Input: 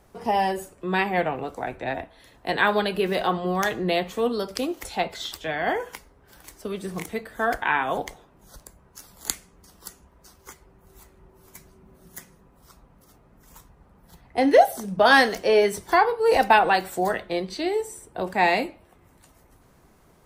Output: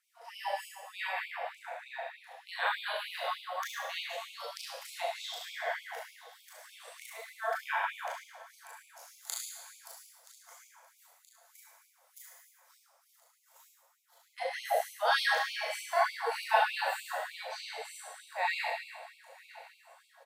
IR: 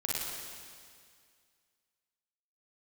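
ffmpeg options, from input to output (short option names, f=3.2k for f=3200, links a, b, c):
-filter_complex "[0:a]aecho=1:1:975|1950|2925|3900|4875:0.1|0.059|0.0348|0.0205|0.0121[a];[1:a]atrim=start_sample=2205,asetrate=70560,aresample=44100[b];[a][b]afir=irnorm=-1:irlink=0,afftfilt=real='re*gte(b*sr/1024,460*pow(2200/460,0.5+0.5*sin(2*PI*3.3*pts/sr)))':imag='im*gte(b*sr/1024,460*pow(2200/460,0.5+0.5*sin(2*PI*3.3*pts/sr)))':win_size=1024:overlap=0.75,volume=-9dB"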